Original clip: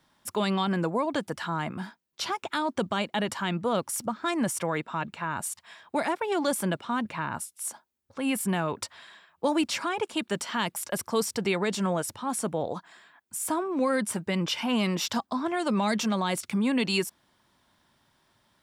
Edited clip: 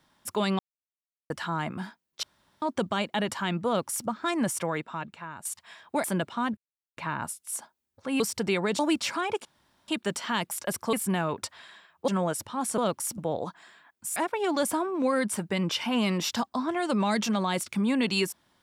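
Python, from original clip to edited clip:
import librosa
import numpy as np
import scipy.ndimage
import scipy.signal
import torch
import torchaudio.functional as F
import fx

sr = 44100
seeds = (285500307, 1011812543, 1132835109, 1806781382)

y = fx.edit(x, sr, fx.silence(start_s=0.59, length_s=0.71),
    fx.room_tone_fill(start_s=2.23, length_s=0.39),
    fx.duplicate(start_s=3.67, length_s=0.4, to_s=12.47),
    fx.fade_out_to(start_s=4.58, length_s=0.87, floor_db=-13.0),
    fx.move(start_s=6.04, length_s=0.52, to_s=13.45),
    fx.insert_silence(at_s=7.09, length_s=0.4),
    fx.swap(start_s=8.32, length_s=1.15, other_s=11.18, other_length_s=0.59),
    fx.insert_room_tone(at_s=10.13, length_s=0.43), tone=tone)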